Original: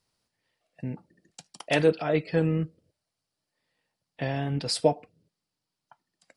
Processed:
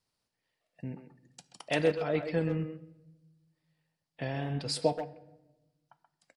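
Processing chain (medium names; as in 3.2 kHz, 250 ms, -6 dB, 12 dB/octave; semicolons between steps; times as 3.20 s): wow and flutter 24 cents; speakerphone echo 130 ms, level -7 dB; on a send at -17 dB: reverberation RT60 1.1 s, pre-delay 10 ms; on the sum: trim -5.5 dB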